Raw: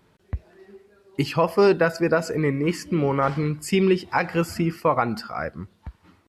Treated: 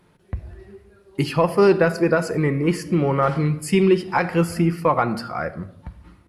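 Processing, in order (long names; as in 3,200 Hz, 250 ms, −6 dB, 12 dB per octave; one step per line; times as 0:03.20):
parametric band 10,000 Hz +12 dB 0.23 octaves
rectangular room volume 2,200 cubic metres, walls furnished, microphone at 0.88 metres
in parallel at −10.5 dB: soft clipping −16 dBFS, distortion −12 dB
on the sum: high-shelf EQ 4,500 Hz −5 dB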